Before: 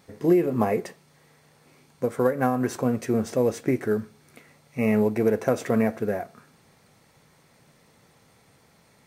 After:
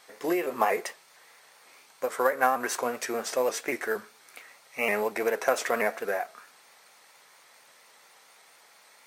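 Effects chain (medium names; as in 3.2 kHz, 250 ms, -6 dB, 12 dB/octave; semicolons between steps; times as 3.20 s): high-pass 820 Hz 12 dB/octave; vibrato with a chosen wave saw up 4.3 Hz, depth 100 cents; trim +6 dB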